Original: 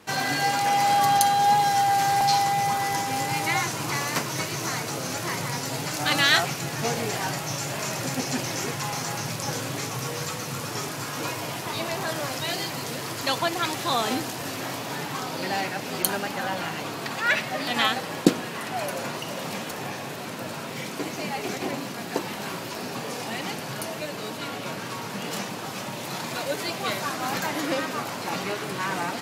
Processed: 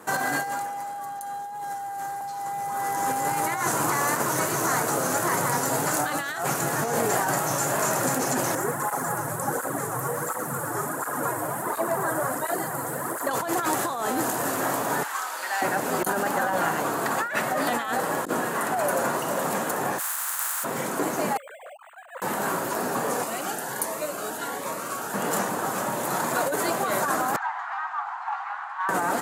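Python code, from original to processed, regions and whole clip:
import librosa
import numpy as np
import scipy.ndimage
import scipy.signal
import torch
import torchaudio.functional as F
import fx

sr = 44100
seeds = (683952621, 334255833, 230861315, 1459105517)

y = fx.chain(x, sr, fx.band_shelf(hz=3900.0, db=-10.0, octaves=1.7),
    fx.flanger_cancel(hz=1.4, depth_ms=5.2), at=(8.55, 13.31))
y = fx.chain(y, sr, fx.highpass(hz=1300.0, slope=12),
    fx.high_shelf(hz=10000.0, db=-6.5), at=(15.03, 15.62))
y = fx.spec_flatten(y, sr, power=0.27, at=(19.98, 20.63), fade=0.02)
y = fx.highpass(y, sr, hz=930.0, slope=24, at=(19.98, 20.63), fade=0.02)
y = fx.chain(y, sr, fx.sine_speech(),
    fx.differentiator(),
    fx.resample_linear(factor=8), at=(21.37, 22.22))
y = fx.chain(y, sr, fx.low_shelf(hz=320.0, db=-10.5),
    fx.notch_cascade(direction='rising', hz=1.3), at=(23.24, 25.14))
y = fx.chain(y, sr, fx.steep_highpass(hz=750.0, slope=96),
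    fx.spacing_loss(db_at_10k=43),
    fx.transformer_sat(knee_hz=1200.0), at=(27.36, 28.89))
y = fx.highpass(y, sr, hz=380.0, slope=6)
y = fx.band_shelf(y, sr, hz=3500.0, db=-13.5, octaves=1.7)
y = fx.over_compress(y, sr, threshold_db=-32.0, ratio=-1.0)
y = y * 10.0 ** (6.0 / 20.0)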